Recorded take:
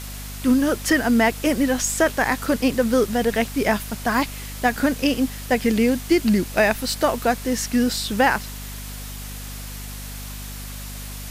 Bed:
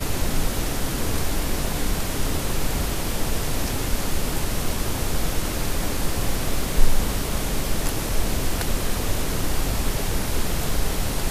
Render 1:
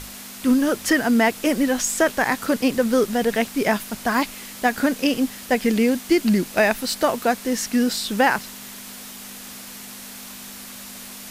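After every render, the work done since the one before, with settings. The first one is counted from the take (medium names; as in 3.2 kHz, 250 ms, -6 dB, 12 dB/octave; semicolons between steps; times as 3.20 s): hum notches 50/100/150 Hz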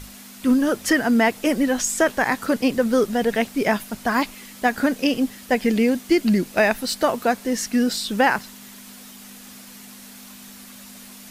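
noise reduction 6 dB, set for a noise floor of -38 dBFS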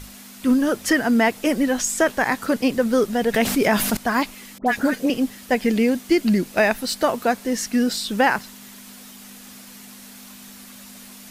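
3.34–3.97 s: level flattener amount 70%; 4.58–5.10 s: phase dispersion highs, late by 83 ms, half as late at 1.6 kHz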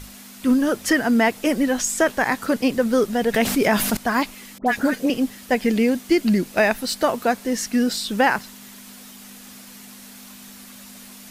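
no audible change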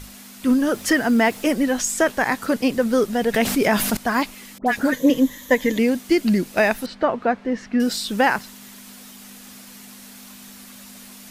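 0.73–1.53 s: companding laws mixed up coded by mu; 4.92–5.79 s: rippled EQ curve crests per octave 1.1, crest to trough 12 dB; 6.86–7.80 s: low-pass 2.2 kHz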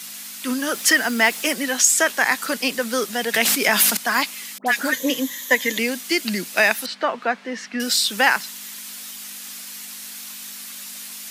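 steep high-pass 150 Hz 72 dB/octave; tilt shelf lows -9 dB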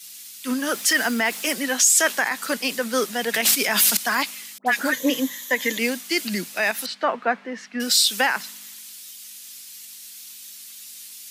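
peak limiter -11.5 dBFS, peak gain reduction 10 dB; three bands expanded up and down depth 70%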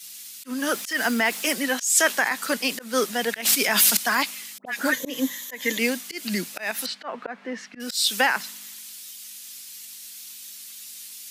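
slow attack 192 ms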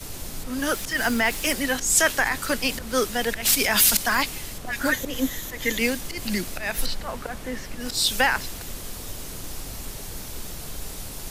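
add bed -13 dB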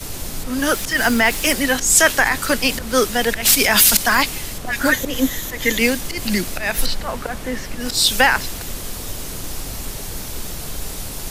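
trim +6.5 dB; peak limiter -1 dBFS, peak gain reduction 2 dB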